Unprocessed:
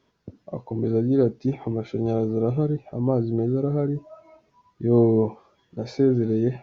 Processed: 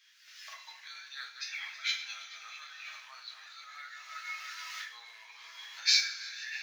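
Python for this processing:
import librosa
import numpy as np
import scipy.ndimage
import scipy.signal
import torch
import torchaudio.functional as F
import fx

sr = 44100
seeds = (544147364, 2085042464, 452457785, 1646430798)

y = fx.reverse_delay_fb(x, sr, ms=162, feedback_pct=72, wet_db=-11.5)
y = fx.recorder_agc(y, sr, target_db=-12.0, rise_db_per_s=42.0, max_gain_db=30)
y = scipy.signal.sosfilt(scipy.signal.butter(6, 1700.0, 'highpass', fs=sr, output='sos'), y)
y = fx.mod_noise(y, sr, seeds[0], snr_db=33)
y = fx.rev_double_slope(y, sr, seeds[1], early_s=0.35, late_s=2.3, knee_db=-21, drr_db=0.5)
y = y * librosa.db_to_amplitude(8.0)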